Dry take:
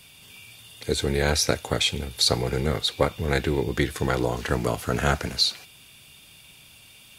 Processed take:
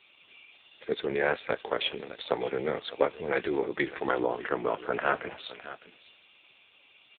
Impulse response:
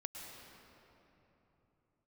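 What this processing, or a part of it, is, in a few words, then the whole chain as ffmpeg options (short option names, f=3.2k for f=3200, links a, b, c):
satellite phone: -filter_complex "[0:a]asplit=3[a][b][c];[a]afade=t=out:st=1.79:d=0.02[d];[b]bandreject=f=1.1k:w=24,afade=t=in:st=1.79:d=0.02,afade=t=out:st=3.36:d=0.02[e];[c]afade=t=in:st=3.36:d=0.02[f];[d][e][f]amix=inputs=3:normalize=0,highpass=350,lowpass=3.2k,aecho=1:1:608:0.168" -ar 8000 -c:a libopencore_amrnb -b:a 5900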